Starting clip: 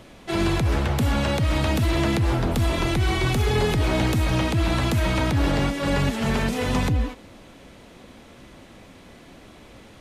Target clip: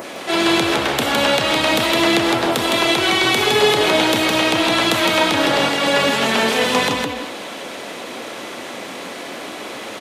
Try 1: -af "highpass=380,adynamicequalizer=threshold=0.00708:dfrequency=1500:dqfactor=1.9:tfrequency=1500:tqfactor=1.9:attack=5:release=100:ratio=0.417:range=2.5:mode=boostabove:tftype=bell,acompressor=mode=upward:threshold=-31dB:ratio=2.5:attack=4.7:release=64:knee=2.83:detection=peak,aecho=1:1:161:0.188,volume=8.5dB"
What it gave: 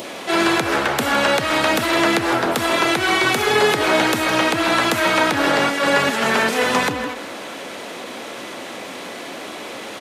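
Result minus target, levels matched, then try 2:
echo-to-direct −11 dB; 4,000 Hz band −3.5 dB
-af "highpass=380,adynamicequalizer=threshold=0.00708:dfrequency=3400:dqfactor=1.9:tfrequency=3400:tqfactor=1.9:attack=5:release=100:ratio=0.417:range=2.5:mode=boostabove:tftype=bell,acompressor=mode=upward:threshold=-31dB:ratio=2.5:attack=4.7:release=64:knee=2.83:detection=peak,aecho=1:1:161:0.668,volume=8.5dB"

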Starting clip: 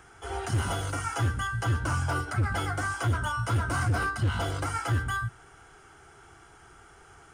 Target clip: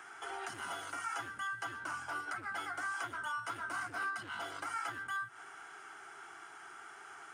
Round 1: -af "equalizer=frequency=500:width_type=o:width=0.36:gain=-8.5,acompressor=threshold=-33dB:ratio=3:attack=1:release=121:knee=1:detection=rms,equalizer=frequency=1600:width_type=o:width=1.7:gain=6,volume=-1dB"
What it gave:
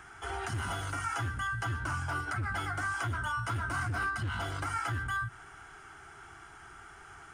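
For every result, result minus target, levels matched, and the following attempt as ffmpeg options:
downward compressor: peak gain reduction −4.5 dB; 250 Hz band +3.5 dB
-af "equalizer=frequency=500:width_type=o:width=0.36:gain=-8.5,acompressor=threshold=-39.5dB:ratio=3:attack=1:release=121:knee=1:detection=rms,equalizer=frequency=1600:width_type=o:width=1.7:gain=6,volume=-1dB"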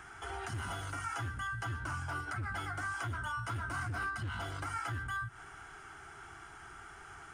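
250 Hz band +3.5 dB
-af "equalizer=frequency=500:width_type=o:width=0.36:gain=-8.5,acompressor=threshold=-39.5dB:ratio=3:attack=1:release=121:knee=1:detection=rms,highpass=350,equalizer=frequency=1600:width_type=o:width=1.7:gain=6,volume=-1dB"

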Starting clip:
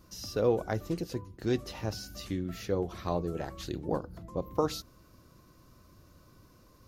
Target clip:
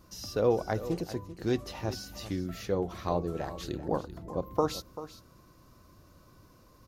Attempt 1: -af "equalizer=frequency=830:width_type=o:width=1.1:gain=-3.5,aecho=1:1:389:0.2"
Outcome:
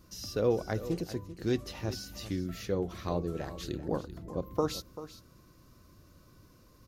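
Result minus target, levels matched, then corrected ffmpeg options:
1,000 Hz band −4.0 dB
-af "equalizer=frequency=830:width_type=o:width=1.1:gain=3,aecho=1:1:389:0.2"

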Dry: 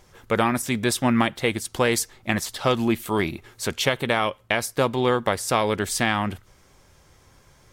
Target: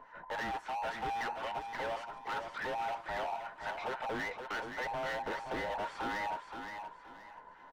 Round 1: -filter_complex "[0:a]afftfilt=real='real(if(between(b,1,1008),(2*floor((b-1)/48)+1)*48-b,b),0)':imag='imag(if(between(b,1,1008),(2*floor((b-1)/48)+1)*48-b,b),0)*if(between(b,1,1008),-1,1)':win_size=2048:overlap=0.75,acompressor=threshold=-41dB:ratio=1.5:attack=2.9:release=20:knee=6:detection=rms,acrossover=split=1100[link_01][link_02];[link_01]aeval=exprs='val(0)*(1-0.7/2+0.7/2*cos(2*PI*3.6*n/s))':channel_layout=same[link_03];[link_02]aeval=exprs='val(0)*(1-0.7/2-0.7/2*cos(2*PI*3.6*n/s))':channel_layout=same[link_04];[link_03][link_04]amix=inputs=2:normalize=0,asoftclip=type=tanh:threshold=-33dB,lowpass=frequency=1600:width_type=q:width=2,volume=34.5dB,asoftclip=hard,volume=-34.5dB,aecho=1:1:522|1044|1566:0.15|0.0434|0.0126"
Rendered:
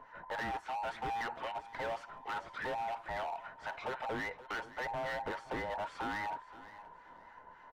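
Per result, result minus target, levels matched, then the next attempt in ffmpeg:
echo-to-direct −9.5 dB; downward compressor: peak gain reduction +3.5 dB; 125 Hz band +2.0 dB
-filter_complex "[0:a]afftfilt=real='real(if(between(b,1,1008),(2*floor((b-1)/48)+1)*48-b,b),0)':imag='imag(if(between(b,1,1008),(2*floor((b-1)/48)+1)*48-b,b),0)*if(between(b,1,1008),-1,1)':win_size=2048:overlap=0.75,acompressor=threshold=-41dB:ratio=1.5:attack=2.9:release=20:knee=6:detection=rms,acrossover=split=1100[link_01][link_02];[link_01]aeval=exprs='val(0)*(1-0.7/2+0.7/2*cos(2*PI*3.6*n/s))':channel_layout=same[link_03];[link_02]aeval=exprs='val(0)*(1-0.7/2-0.7/2*cos(2*PI*3.6*n/s))':channel_layout=same[link_04];[link_03][link_04]amix=inputs=2:normalize=0,asoftclip=type=tanh:threshold=-33dB,lowpass=frequency=1600:width_type=q:width=2,volume=34.5dB,asoftclip=hard,volume=-34.5dB,aecho=1:1:522|1044|1566|2088:0.447|0.13|0.0376|0.0109"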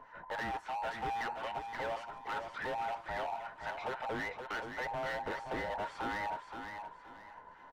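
downward compressor: peak gain reduction +3.5 dB; 125 Hz band +2.5 dB
-filter_complex "[0:a]afftfilt=real='real(if(between(b,1,1008),(2*floor((b-1)/48)+1)*48-b,b),0)':imag='imag(if(between(b,1,1008),(2*floor((b-1)/48)+1)*48-b,b),0)*if(between(b,1,1008),-1,1)':win_size=2048:overlap=0.75,acompressor=threshold=-31dB:ratio=1.5:attack=2.9:release=20:knee=6:detection=rms,acrossover=split=1100[link_01][link_02];[link_01]aeval=exprs='val(0)*(1-0.7/2+0.7/2*cos(2*PI*3.6*n/s))':channel_layout=same[link_03];[link_02]aeval=exprs='val(0)*(1-0.7/2-0.7/2*cos(2*PI*3.6*n/s))':channel_layout=same[link_04];[link_03][link_04]amix=inputs=2:normalize=0,asoftclip=type=tanh:threshold=-33dB,lowpass=frequency=1600:width_type=q:width=2,volume=34.5dB,asoftclip=hard,volume=-34.5dB,aecho=1:1:522|1044|1566|2088:0.447|0.13|0.0376|0.0109"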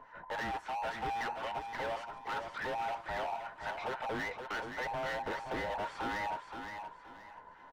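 125 Hz band +2.5 dB
-filter_complex "[0:a]afftfilt=real='real(if(between(b,1,1008),(2*floor((b-1)/48)+1)*48-b,b),0)':imag='imag(if(between(b,1,1008),(2*floor((b-1)/48)+1)*48-b,b),0)*if(between(b,1,1008),-1,1)':win_size=2048:overlap=0.75,acompressor=threshold=-31dB:ratio=1.5:attack=2.9:release=20:knee=6:detection=rms,acrossover=split=1100[link_01][link_02];[link_01]aeval=exprs='val(0)*(1-0.7/2+0.7/2*cos(2*PI*3.6*n/s))':channel_layout=same[link_03];[link_02]aeval=exprs='val(0)*(1-0.7/2-0.7/2*cos(2*PI*3.6*n/s))':channel_layout=same[link_04];[link_03][link_04]amix=inputs=2:normalize=0,asoftclip=type=tanh:threshold=-33dB,lowpass=frequency=1600:width_type=q:width=2,equalizer=frequency=88:width=1.4:gain=-7,volume=34.5dB,asoftclip=hard,volume=-34.5dB,aecho=1:1:522|1044|1566|2088:0.447|0.13|0.0376|0.0109"

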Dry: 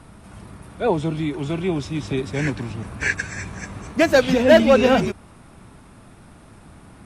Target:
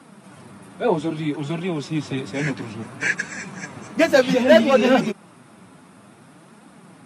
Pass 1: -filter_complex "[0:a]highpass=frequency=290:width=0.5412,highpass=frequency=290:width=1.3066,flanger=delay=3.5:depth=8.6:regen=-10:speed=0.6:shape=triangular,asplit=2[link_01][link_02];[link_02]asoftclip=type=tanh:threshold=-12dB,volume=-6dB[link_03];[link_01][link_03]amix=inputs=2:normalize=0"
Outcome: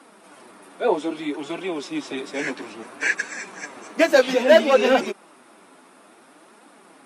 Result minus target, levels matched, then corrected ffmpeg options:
125 Hz band −17.0 dB
-filter_complex "[0:a]highpass=frequency=140:width=0.5412,highpass=frequency=140:width=1.3066,flanger=delay=3.5:depth=8.6:regen=-10:speed=0.6:shape=triangular,asplit=2[link_01][link_02];[link_02]asoftclip=type=tanh:threshold=-12dB,volume=-6dB[link_03];[link_01][link_03]amix=inputs=2:normalize=0"

